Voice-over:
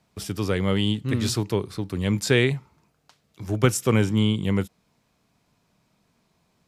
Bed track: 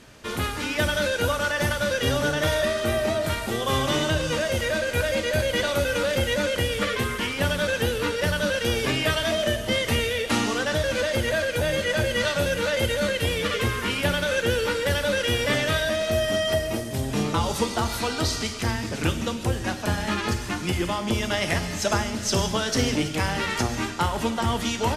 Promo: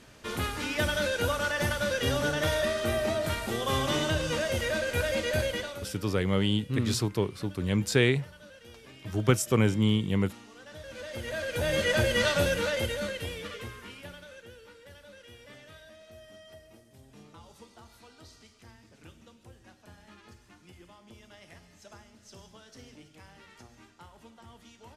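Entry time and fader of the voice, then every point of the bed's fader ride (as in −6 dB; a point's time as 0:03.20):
5.65 s, −3.5 dB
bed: 0:05.45 −4.5 dB
0:06.04 −26.5 dB
0:10.49 −26.5 dB
0:11.81 −1.5 dB
0:12.42 −1.5 dB
0:14.59 −27.5 dB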